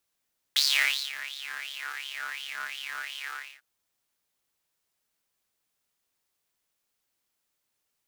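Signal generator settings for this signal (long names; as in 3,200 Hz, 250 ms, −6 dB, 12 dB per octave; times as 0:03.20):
subtractive patch with filter wobble C#2, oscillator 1 square, oscillator 2 saw, interval +19 semitones, oscillator 2 level −7.5 dB, noise −20.5 dB, filter highpass, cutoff 1,600 Hz, Q 7.6, filter envelope 1 octave, filter decay 1.29 s, attack 1.1 ms, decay 0.56 s, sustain −18 dB, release 0.31 s, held 2.74 s, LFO 2.8 Hz, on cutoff 0.6 octaves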